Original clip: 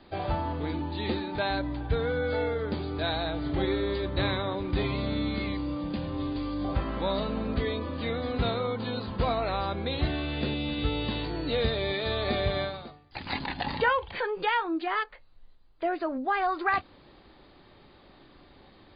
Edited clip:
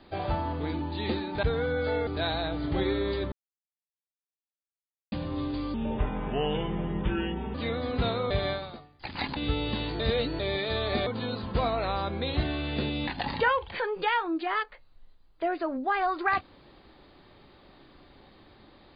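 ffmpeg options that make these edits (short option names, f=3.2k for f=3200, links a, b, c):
-filter_complex "[0:a]asplit=13[a][b][c][d][e][f][g][h][i][j][k][l][m];[a]atrim=end=1.432[n];[b]atrim=start=1.888:end=2.532[o];[c]atrim=start=2.888:end=4.14,asetpts=PTS-STARTPTS,afade=t=out:st=1.248:d=0.004:c=hsin[p];[d]atrim=start=4.14:end=5.94,asetpts=PTS-STARTPTS,volume=0[q];[e]atrim=start=5.94:end=6.564,asetpts=PTS-STARTPTS,afade=t=in:d=0.004:c=hsin[r];[f]atrim=start=6.56:end=7.95,asetpts=PTS-STARTPTS,asetrate=33957,aresample=44100,atrim=end_sample=79609,asetpts=PTS-STARTPTS[s];[g]atrim=start=7.946:end=8.712[t];[h]atrim=start=12.418:end=13.482[u];[i]atrim=start=10.718:end=11.352[v];[j]atrim=start=11.348:end=11.752,asetpts=PTS-STARTPTS,areverse[w];[k]atrim=start=11.748:end=12.422[x];[l]atrim=start=8.708:end=10.722[y];[m]atrim=start=13.478[z];[n][o]acrossfade=d=0.004:c1=hsin:c2=hsin[aa];[p][q][r]concat=n=3:v=0:a=1[ab];[aa][ab]acrossfade=d=0.004:c1=hsin:c2=hsin[ac];[ac][s]acrossfade=d=0.004:c1=hsin:c2=hsin[ad];[ad][t]acrossfade=d=0.004:c1=hsin:c2=hsin[ae];[ae][u]acrossfade=d=0.004:c1=hsin:c2=hsin[af];[af][v]acrossfade=d=0.004:c1=hsin:c2=hsin[ag];[ag][w]acrossfade=d=0.004:c1=hsin:c2=hsin[ah];[ah][x]acrossfade=d=0.004:c1=hsin:c2=hsin[ai];[ai][y]acrossfade=d=0.004:c1=hsin:c2=hsin[aj];[aj][z]acrossfade=d=0.004:c1=hsin:c2=hsin"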